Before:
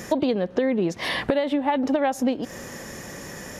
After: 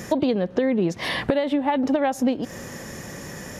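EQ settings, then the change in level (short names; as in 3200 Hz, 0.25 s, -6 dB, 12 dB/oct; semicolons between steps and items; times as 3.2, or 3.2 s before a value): bell 120 Hz +4.5 dB 1.7 oct; 0.0 dB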